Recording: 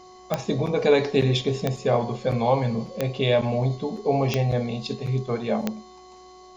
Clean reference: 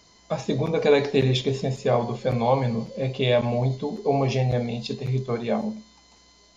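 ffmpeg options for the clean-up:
-af "adeclick=t=4,bandreject=f=368.3:t=h:w=4,bandreject=f=736.6:t=h:w=4,bandreject=f=1.1049k:t=h:w=4"

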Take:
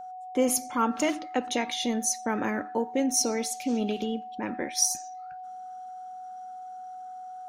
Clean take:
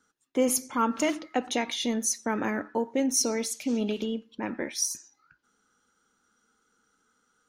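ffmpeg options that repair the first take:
-af "bandreject=f=740:w=30,asetnsamples=n=441:p=0,asendcmd='4.77 volume volume -4dB',volume=0dB"

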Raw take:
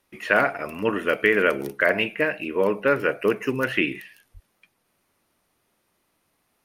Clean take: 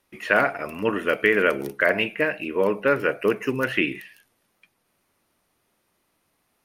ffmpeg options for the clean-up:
-filter_complex "[0:a]asplit=3[a][b][c];[a]afade=t=out:st=4.33:d=0.02[d];[b]highpass=f=140:w=0.5412,highpass=f=140:w=1.3066,afade=t=in:st=4.33:d=0.02,afade=t=out:st=4.45:d=0.02[e];[c]afade=t=in:st=4.45:d=0.02[f];[d][e][f]amix=inputs=3:normalize=0"

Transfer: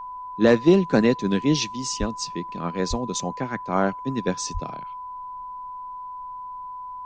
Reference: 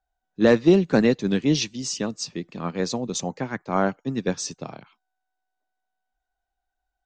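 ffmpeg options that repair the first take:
-filter_complex "[0:a]bandreject=f=1k:w=30,asplit=3[a][b][c];[a]afade=t=out:st=1.99:d=0.02[d];[b]highpass=f=140:w=0.5412,highpass=f=140:w=1.3066,afade=t=in:st=1.99:d=0.02,afade=t=out:st=2.11:d=0.02[e];[c]afade=t=in:st=2.11:d=0.02[f];[d][e][f]amix=inputs=3:normalize=0,asplit=3[g][h][i];[g]afade=t=out:st=2.89:d=0.02[j];[h]highpass=f=140:w=0.5412,highpass=f=140:w=1.3066,afade=t=in:st=2.89:d=0.02,afade=t=out:st=3.01:d=0.02[k];[i]afade=t=in:st=3.01:d=0.02[l];[j][k][l]amix=inputs=3:normalize=0,asplit=3[m][n][o];[m]afade=t=out:st=4.53:d=0.02[p];[n]highpass=f=140:w=0.5412,highpass=f=140:w=1.3066,afade=t=in:st=4.53:d=0.02,afade=t=out:st=4.65:d=0.02[q];[o]afade=t=in:st=4.65:d=0.02[r];[p][q][r]amix=inputs=3:normalize=0,agate=range=-21dB:threshold=-28dB"

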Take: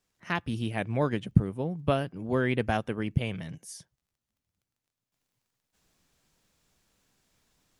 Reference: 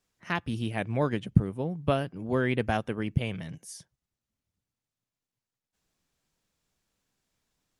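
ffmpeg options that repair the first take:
-af "adeclick=t=4,asetnsamples=n=441:p=0,asendcmd='5.12 volume volume -8dB',volume=0dB"

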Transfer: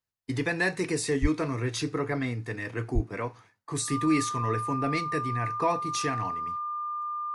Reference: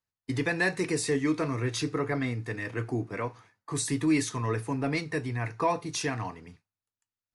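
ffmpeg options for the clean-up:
-filter_complex "[0:a]bandreject=f=1.2k:w=30,asplit=3[a][b][c];[a]afade=t=out:st=1.21:d=0.02[d];[b]highpass=f=140:w=0.5412,highpass=f=140:w=1.3066,afade=t=in:st=1.21:d=0.02,afade=t=out:st=1.33:d=0.02[e];[c]afade=t=in:st=1.33:d=0.02[f];[d][e][f]amix=inputs=3:normalize=0,asplit=3[g][h][i];[g]afade=t=out:st=2.94:d=0.02[j];[h]highpass=f=140:w=0.5412,highpass=f=140:w=1.3066,afade=t=in:st=2.94:d=0.02,afade=t=out:st=3.06:d=0.02[k];[i]afade=t=in:st=3.06:d=0.02[l];[j][k][l]amix=inputs=3:normalize=0"

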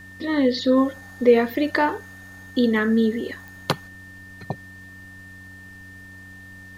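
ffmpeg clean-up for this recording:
-af "adeclick=t=4,bandreject=f=94.1:t=h:w=4,bandreject=f=188.2:t=h:w=4,bandreject=f=282.3:t=h:w=4,bandreject=f=1.8k:w=30,agate=range=-21dB:threshold=-35dB"

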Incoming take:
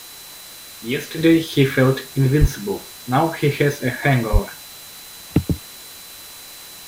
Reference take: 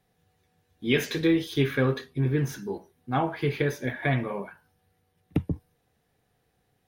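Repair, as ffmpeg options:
-filter_complex "[0:a]bandreject=f=4k:w=30,asplit=3[a][b][c];[a]afade=t=out:st=2.4:d=0.02[d];[b]highpass=f=140:w=0.5412,highpass=f=140:w=1.3066,afade=t=in:st=2.4:d=0.02,afade=t=out:st=2.52:d=0.02[e];[c]afade=t=in:st=2.52:d=0.02[f];[d][e][f]amix=inputs=3:normalize=0,asplit=3[g][h][i];[g]afade=t=out:st=4.32:d=0.02[j];[h]highpass=f=140:w=0.5412,highpass=f=140:w=1.3066,afade=t=in:st=4.32:d=0.02,afade=t=out:st=4.44:d=0.02[k];[i]afade=t=in:st=4.44:d=0.02[l];[j][k][l]amix=inputs=3:normalize=0,afwtdn=0.013,asetnsamples=n=441:p=0,asendcmd='1.18 volume volume -8.5dB',volume=0dB"

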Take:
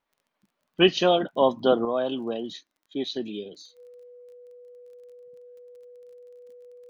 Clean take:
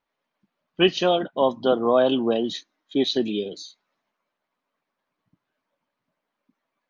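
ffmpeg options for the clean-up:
-af "adeclick=t=4,bandreject=f=490:w=30,asetnsamples=n=441:p=0,asendcmd='1.85 volume volume 8dB',volume=0dB"

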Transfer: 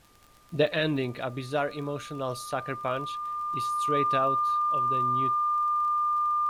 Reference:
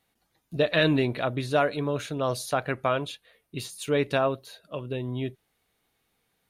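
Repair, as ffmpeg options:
-af "adeclick=t=4,bandreject=f=1.2k:w=30,agate=range=-21dB:threshold=-33dB,asetnsamples=n=441:p=0,asendcmd='0.73 volume volume 5dB',volume=0dB"

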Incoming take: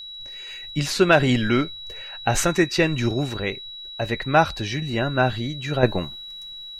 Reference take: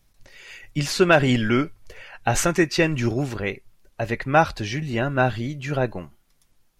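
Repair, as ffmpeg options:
-af "bandreject=f=3.9k:w=30,asetnsamples=n=441:p=0,asendcmd='5.83 volume volume -7.5dB',volume=0dB"

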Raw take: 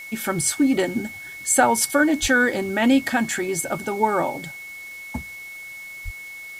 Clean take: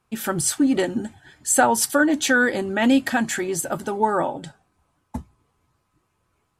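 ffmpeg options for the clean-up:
-filter_complex "[0:a]bandreject=f=2.2k:w=30,asplit=3[a][b][c];[a]afade=t=out:st=2.21:d=0.02[d];[b]highpass=f=140:w=0.5412,highpass=f=140:w=1.3066,afade=t=in:st=2.21:d=0.02,afade=t=out:st=2.33:d=0.02[e];[c]afade=t=in:st=2.33:d=0.02[f];[d][e][f]amix=inputs=3:normalize=0,asplit=3[g][h][i];[g]afade=t=out:st=6.04:d=0.02[j];[h]highpass=f=140:w=0.5412,highpass=f=140:w=1.3066,afade=t=in:st=6.04:d=0.02,afade=t=out:st=6.16:d=0.02[k];[i]afade=t=in:st=6.16:d=0.02[l];[j][k][l]amix=inputs=3:normalize=0,afwtdn=0.0045,asetnsamples=n=441:p=0,asendcmd='6.2 volume volume 9.5dB',volume=0dB"

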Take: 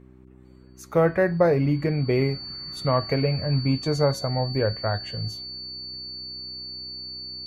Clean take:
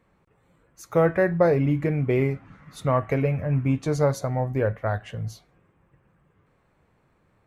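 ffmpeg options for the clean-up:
-af "bandreject=f=63.5:t=h:w=4,bandreject=f=127:t=h:w=4,bandreject=f=190.5:t=h:w=4,bandreject=f=254:t=h:w=4,bandreject=f=317.5:t=h:w=4,bandreject=f=381:t=h:w=4,bandreject=f=4.5k:w=30"

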